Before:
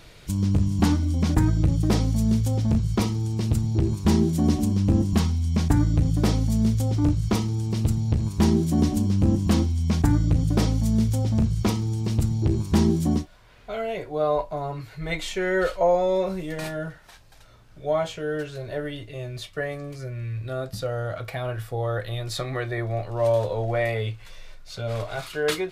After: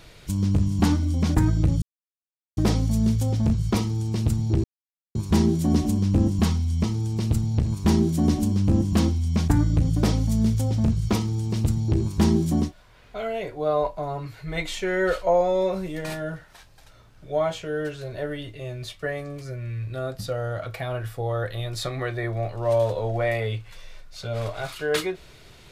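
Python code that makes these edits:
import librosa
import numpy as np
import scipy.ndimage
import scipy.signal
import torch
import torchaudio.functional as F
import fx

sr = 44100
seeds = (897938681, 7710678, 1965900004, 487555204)

y = fx.edit(x, sr, fx.insert_silence(at_s=1.82, length_s=0.75),
    fx.insert_silence(at_s=3.89, length_s=0.51),
    fx.cut(start_s=5.58, length_s=1.8), tone=tone)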